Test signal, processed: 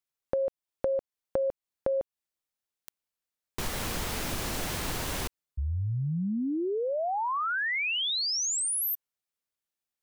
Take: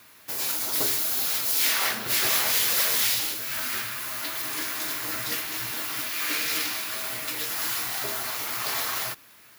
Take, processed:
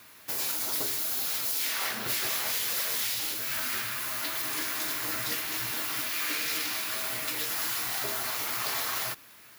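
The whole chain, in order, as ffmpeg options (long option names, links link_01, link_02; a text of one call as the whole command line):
ffmpeg -i in.wav -af "acompressor=threshold=-27dB:ratio=6" out.wav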